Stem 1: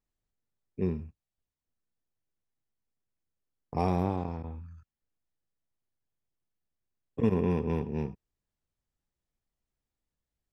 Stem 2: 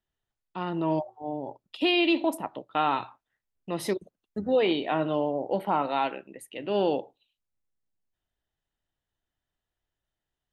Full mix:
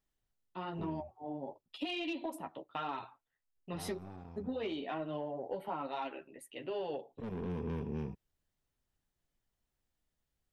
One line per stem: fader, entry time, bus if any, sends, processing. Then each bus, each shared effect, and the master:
+1.5 dB, 0.00 s, no send, soft clip -28.5 dBFS, distortion -7 dB; auto duck -14 dB, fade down 1.35 s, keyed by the second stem
-4.0 dB, 0.00 s, no send, chorus voices 6, 0.93 Hz, delay 10 ms, depth 3 ms; soft clip -16.5 dBFS, distortion -24 dB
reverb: off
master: compressor, threshold -35 dBFS, peak gain reduction 8.5 dB

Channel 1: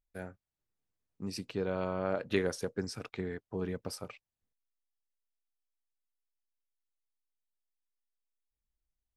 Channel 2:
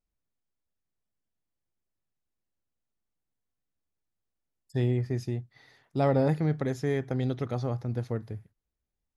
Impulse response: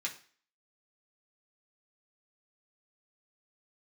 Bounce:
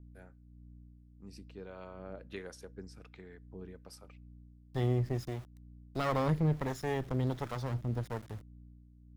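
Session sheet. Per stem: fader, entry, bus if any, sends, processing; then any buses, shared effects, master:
-11.0 dB, 0.00 s, send -20 dB, dry
-0.5 dB, 0.00 s, no send, minimum comb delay 0.56 ms; sample gate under -46.5 dBFS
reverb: on, RT60 0.45 s, pre-delay 3 ms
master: hum 60 Hz, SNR 17 dB; harmonic tremolo 1.4 Hz, depth 50%, crossover 540 Hz

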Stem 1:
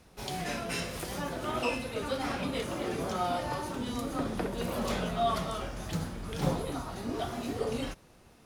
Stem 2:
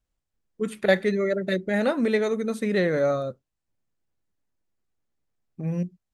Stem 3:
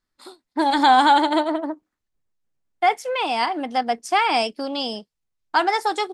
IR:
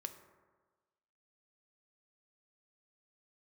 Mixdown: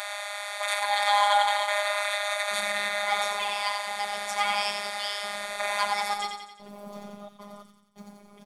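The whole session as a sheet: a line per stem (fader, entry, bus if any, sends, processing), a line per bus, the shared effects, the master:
-2.5 dB, 2.05 s, bus A, send -17.5 dB, echo send -22.5 dB, step gate "x...xxxxxx.x" 132 bpm -60 dB; bell 210 Hz +8.5 dB 0.21 oct; comb 5.4 ms, depth 78%
-0.5 dB, 0.00 s, no bus, no send, echo send -9.5 dB, per-bin compression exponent 0.2; steep high-pass 600 Hz 96 dB/oct; limiter -17 dBFS, peak gain reduction 10.5 dB
-4.0 dB, 0.15 s, bus A, no send, echo send -3.5 dB, HPF 630 Hz 24 dB/oct
bus A: 0.0 dB, band-pass 660 Hz, Q 2.7; compressor, threshold -33 dBFS, peak gain reduction 13 dB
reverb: on, RT60 1.4 s, pre-delay 3 ms
echo: feedback echo 89 ms, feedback 52%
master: high shelf 4300 Hz +8.5 dB; comb 0.9 ms, depth 38%; robotiser 204 Hz

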